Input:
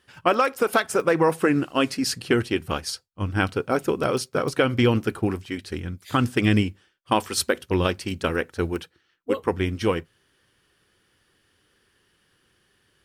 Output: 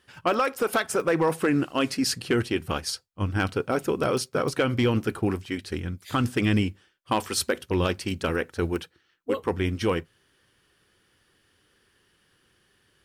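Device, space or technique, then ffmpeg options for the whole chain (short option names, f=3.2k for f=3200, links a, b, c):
clipper into limiter: -af "asoftclip=type=hard:threshold=-11.5dB,alimiter=limit=-15dB:level=0:latency=1:release=12"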